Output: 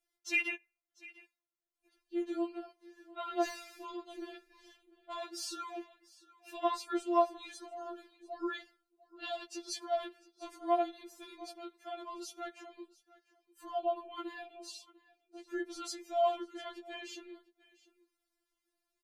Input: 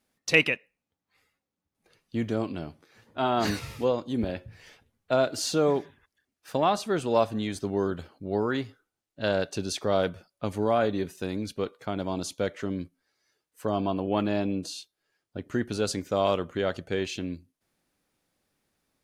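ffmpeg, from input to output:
-filter_complex "[0:a]asettb=1/sr,asplit=3[s0][s1][s2];[s0]atrim=end=5.774[s3];[s1]atrim=start=5.77:end=6.59,asetpts=PTS-STARTPTS,afade=t=in:d=0.004:c=qsin,afade=t=out:st=0.816:d=0.004:c=qsin,equalizer=f=2700:w=7.2:g=14[s4];[s2]atrim=start=6.586[s5];[s3][s4]acrossfade=d=0.004:c1=hsin:c2=qsin[s6];[s6][s5]acrossfade=d=0.004:c1=qsin:c2=hsin,aecho=1:1:697:0.0891,afftfilt=real='re*4*eq(mod(b,16),0)':imag='im*4*eq(mod(b,16),0)':win_size=2048:overlap=0.75,volume=0.447"

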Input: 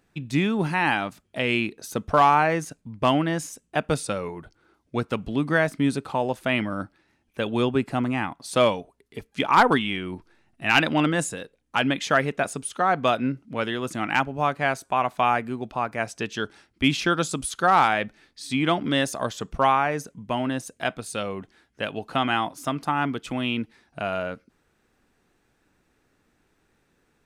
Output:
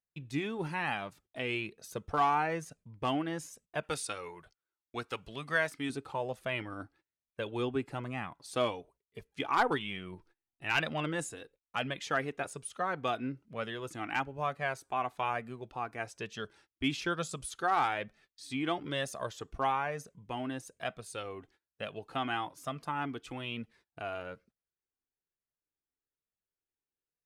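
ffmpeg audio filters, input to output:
-filter_complex "[0:a]asettb=1/sr,asplit=3[s0][s1][s2];[s0]atrim=end=3.834[s3];[s1]atrim=start=3.83:end=5.9,asetpts=PTS-STARTPTS,afade=t=in:d=0.004:c=qsin,afade=t=out:st=2.066:d=0.004:c=qsin,tiltshelf=f=710:g=-6.5[s4];[s2]atrim=start=5.896[s5];[s3][s4]acrossfade=d=0.004:c1=hsin:c2=qsin[s6];[s6][s5]acrossfade=d=0.004:c1=qsin:c2=hsin,agate=range=0.0631:threshold=0.00316:ratio=16:detection=peak,flanger=delay=1.5:depth=1.3:regen=-34:speed=1.1:shape=triangular,volume=0.447"

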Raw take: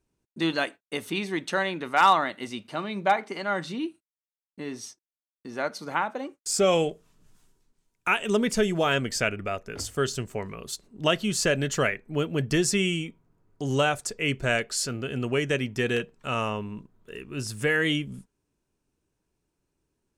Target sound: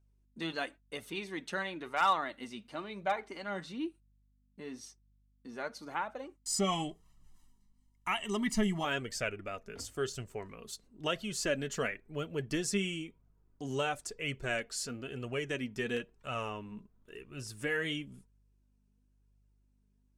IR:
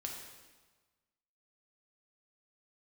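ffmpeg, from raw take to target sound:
-filter_complex "[0:a]asettb=1/sr,asplit=3[s0][s1][s2];[s0]atrim=end=6.354[s3];[s1]atrim=start=6.35:end=8.85,asetpts=PTS-STARTPTS,afade=t=in:d=0.004:c=qsin,afade=t=out:st=2.496:d=0.004:c=qsin,aecho=1:1:1:0.98,atrim=end_sample=110250[s4];[s2]atrim=start=8.846[s5];[s3][s4]acrossfade=d=0.004:c1=hsin:c2=qsin[s6];[s6][s5]acrossfade=d=0.004:c1=qsin:c2=hsin,aeval=exprs='val(0)+0.001*(sin(2*PI*50*n/s)+sin(2*PI*2*50*n/s)/2+sin(2*PI*3*50*n/s)/3+sin(2*PI*4*50*n/s)/4+sin(2*PI*5*50*n/s)/5)':c=same,flanger=delay=1.3:depth=3.7:regen=40:speed=0.98:shape=triangular,volume=0.531"

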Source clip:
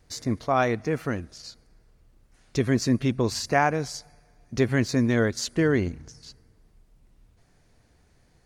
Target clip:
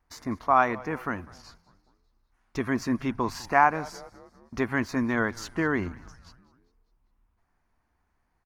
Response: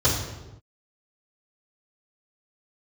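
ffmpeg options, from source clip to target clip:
-filter_complex "[0:a]agate=range=0.316:threshold=0.00447:ratio=16:detection=peak,equalizer=f=125:t=o:w=1:g=-11,equalizer=f=500:t=o:w=1:g=-9,equalizer=f=1000:t=o:w=1:g=10,equalizer=f=4000:t=o:w=1:g=-8,equalizer=f=8000:t=o:w=1:g=-10,asplit=2[s0][s1];[s1]asplit=4[s2][s3][s4][s5];[s2]adelay=199,afreqshift=-130,volume=0.0891[s6];[s3]adelay=398,afreqshift=-260,volume=0.0462[s7];[s4]adelay=597,afreqshift=-390,volume=0.024[s8];[s5]adelay=796,afreqshift=-520,volume=0.0126[s9];[s6][s7][s8][s9]amix=inputs=4:normalize=0[s10];[s0][s10]amix=inputs=2:normalize=0"

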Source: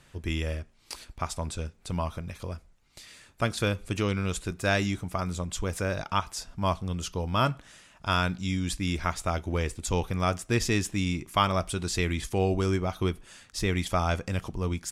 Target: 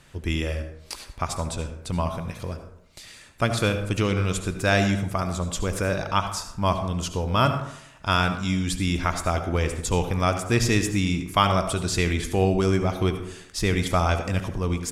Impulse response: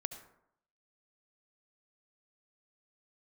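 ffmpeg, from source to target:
-filter_complex "[1:a]atrim=start_sample=2205[s0];[0:a][s0]afir=irnorm=-1:irlink=0,volume=1.88"

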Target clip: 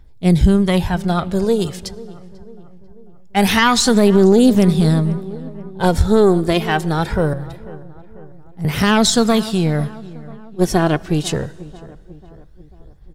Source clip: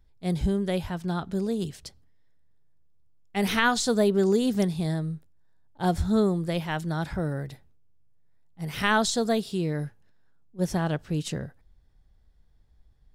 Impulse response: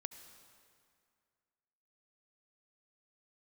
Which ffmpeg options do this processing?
-filter_complex "[0:a]aeval=exprs='0.355*(cos(1*acos(clip(val(0)/0.355,-1,1)))-cos(1*PI/2))+0.112*(cos(2*acos(clip(val(0)/0.355,-1,1)))-cos(2*PI/2))':c=same,aphaser=in_gain=1:out_gain=1:delay=2.9:decay=0.44:speed=0.23:type=triangular,asettb=1/sr,asplit=3[s0][s1][s2];[s0]atrim=end=7.334[s3];[s1]atrim=start=7.33:end=8.65,asetpts=PTS-STARTPTS,afade=t=in:d=0.004:c=qsin,afade=t=out:st=1.316:d=0.004:c=qsin,acrossover=split=130[s4][s5];[s5]acompressor=threshold=0.00398:ratio=3[s6];[s4][s6]amix=inputs=2:normalize=0[s7];[s2]atrim=start=8.646[s8];[s3][s7]acrossfade=d=0.004:c1=hsin:c2=qsin[s9];[s9][s8]acrossfade=d=0.004:c1=qsin:c2=hsin,asplit=2[s10][s11];[s11]adelay=493,lowpass=f=1700:p=1,volume=0.112,asplit=2[s12][s13];[s13]adelay=493,lowpass=f=1700:p=1,volume=0.55,asplit=2[s14][s15];[s15]adelay=493,lowpass=f=1700:p=1,volume=0.55,asplit=2[s16][s17];[s17]adelay=493,lowpass=f=1700:p=1,volume=0.55,asplit=2[s18][s19];[s19]adelay=493,lowpass=f=1700:p=1,volume=0.55[s20];[s10][s12][s14][s16][s18][s20]amix=inputs=6:normalize=0,asplit=2[s21][s22];[1:a]atrim=start_sample=2205[s23];[s22][s23]afir=irnorm=-1:irlink=0,volume=0.398[s24];[s21][s24]amix=inputs=2:normalize=0,alimiter=level_in=3.16:limit=0.891:release=50:level=0:latency=1,volume=0.891"

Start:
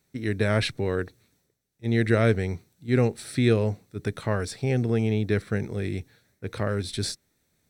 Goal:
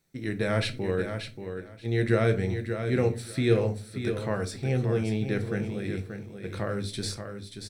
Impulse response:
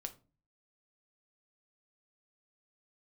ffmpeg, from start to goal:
-filter_complex "[0:a]aecho=1:1:582|1164|1746:0.398|0.0717|0.0129[s0];[1:a]atrim=start_sample=2205[s1];[s0][s1]afir=irnorm=-1:irlink=0"

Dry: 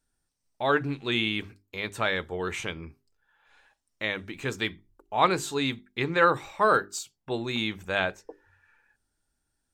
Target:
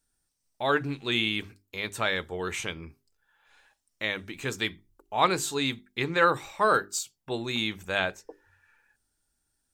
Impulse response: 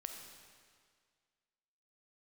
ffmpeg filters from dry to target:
-af "highshelf=f=4300:g=7.5,volume=0.841"

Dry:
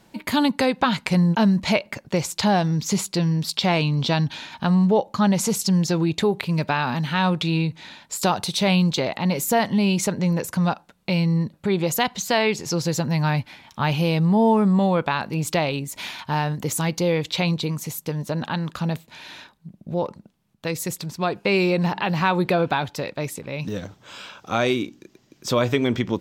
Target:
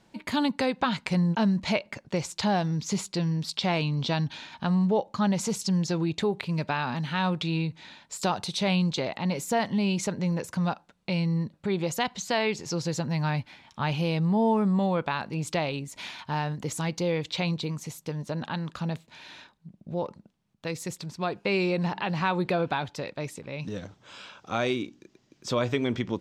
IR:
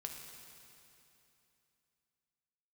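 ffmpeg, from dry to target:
-af "lowpass=8400,volume=0.501"

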